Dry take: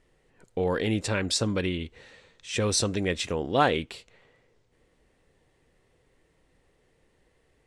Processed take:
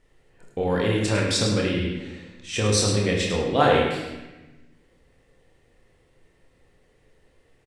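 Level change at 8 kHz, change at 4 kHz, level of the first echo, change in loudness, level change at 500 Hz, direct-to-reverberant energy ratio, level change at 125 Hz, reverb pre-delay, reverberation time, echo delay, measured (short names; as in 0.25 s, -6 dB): +3.5 dB, +4.0 dB, -7.5 dB, +4.5 dB, +5.5 dB, -2.5 dB, +6.5 dB, 22 ms, 1.1 s, 0.104 s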